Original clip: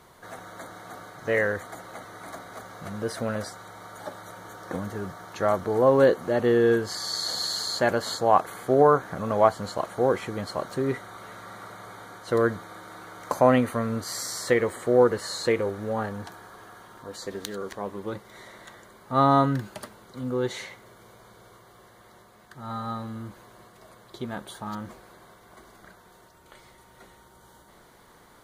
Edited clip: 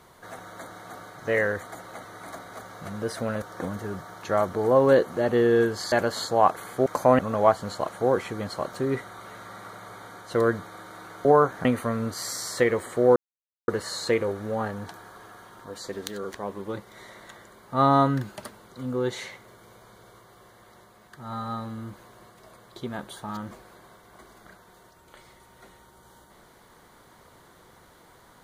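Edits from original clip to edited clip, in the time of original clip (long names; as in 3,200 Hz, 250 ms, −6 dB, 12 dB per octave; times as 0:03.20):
0:03.42–0:04.53: remove
0:07.03–0:07.82: remove
0:08.76–0:09.16: swap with 0:13.22–0:13.55
0:15.06: splice in silence 0.52 s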